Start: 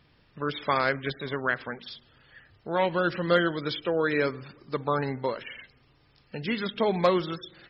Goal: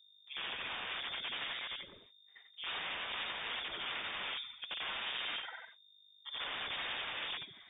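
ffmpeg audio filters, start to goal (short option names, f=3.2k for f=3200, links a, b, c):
-af "afftfilt=real='re':imag='-im':win_size=8192:overlap=0.75,agate=range=-59dB:threshold=-57dB:ratio=16:detection=peak,aeval=exprs='(tanh(7.94*val(0)+0.2)-tanh(0.2))/7.94':c=same,aeval=exprs='(mod(44.7*val(0)+1,2)-1)/44.7':c=same,aeval=exprs='val(0)+0.000708*(sin(2*PI*50*n/s)+sin(2*PI*2*50*n/s)/2+sin(2*PI*3*50*n/s)/3+sin(2*PI*4*50*n/s)/4+sin(2*PI*5*50*n/s)/5)':c=same,lowpass=f=3.1k:t=q:w=0.5098,lowpass=f=3.1k:t=q:w=0.6013,lowpass=f=3.1k:t=q:w=0.9,lowpass=f=3.1k:t=q:w=2.563,afreqshift=-3700"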